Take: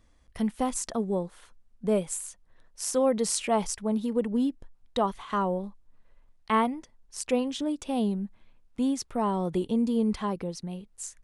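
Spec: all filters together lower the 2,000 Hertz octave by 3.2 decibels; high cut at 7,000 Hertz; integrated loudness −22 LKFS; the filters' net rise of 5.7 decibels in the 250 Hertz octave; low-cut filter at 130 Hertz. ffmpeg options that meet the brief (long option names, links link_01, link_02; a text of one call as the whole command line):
ffmpeg -i in.wav -af "highpass=130,lowpass=7000,equalizer=frequency=250:width_type=o:gain=7,equalizer=frequency=2000:width_type=o:gain=-4,volume=3dB" out.wav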